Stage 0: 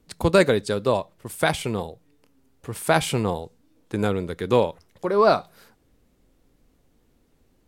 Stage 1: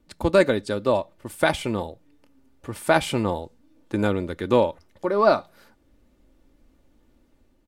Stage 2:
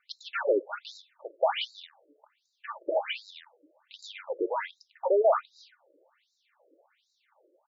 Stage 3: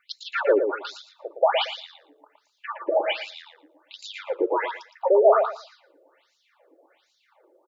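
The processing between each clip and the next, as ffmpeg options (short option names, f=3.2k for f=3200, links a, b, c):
-af "highshelf=f=4.5k:g=-7,aecho=1:1:3.4:0.43,dynaudnorm=f=180:g=5:m=3.5dB,volume=-2dB"
-filter_complex "[0:a]crystalizer=i=1:c=0,asplit=2[a][b];[b]highpass=f=720:p=1,volume=27dB,asoftclip=type=tanh:threshold=-4dB[c];[a][c]amix=inputs=2:normalize=0,lowpass=f=2k:p=1,volume=-6dB,afftfilt=real='re*between(b*sr/1024,420*pow(5300/420,0.5+0.5*sin(2*PI*1.3*pts/sr))/1.41,420*pow(5300/420,0.5+0.5*sin(2*PI*1.3*pts/sr))*1.41)':imag='im*between(b*sr/1024,420*pow(5300/420,0.5+0.5*sin(2*PI*1.3*pts/sr))/1.41,420*pow(5300/420,0.5+0.5*sin(2*PI*1.3*pts/sr))*1.41)':win_size=1024:overlap=0.75,volume=-8.5dB"
-filter_complex "[0:a]asplit=2[a][b];[b]adelay=115,lowpass=f=3.6k:p=1,volume=-6dB,asplit=2[c][d];[d]adelay=115,lowpass=f=3.6k:p=1,volume=0.18,asplit=2[e][f];[f]adelay=115,lowpass=f=3.6k:p=1,volume=0.18[g];[a][c][e][g]amix=inputs=4:normalize=0,volume=5.5dB"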